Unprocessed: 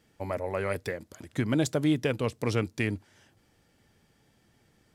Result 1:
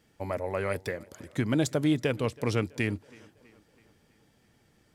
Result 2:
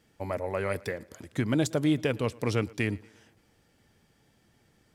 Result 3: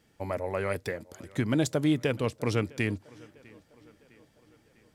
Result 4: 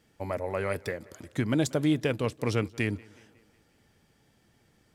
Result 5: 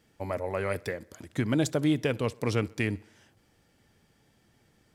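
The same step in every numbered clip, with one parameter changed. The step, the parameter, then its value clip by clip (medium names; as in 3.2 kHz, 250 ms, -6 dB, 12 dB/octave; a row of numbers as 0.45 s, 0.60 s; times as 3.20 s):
tape echo, time: 326 ms, 114 ms, 653 ms, 183 ms, 64 ms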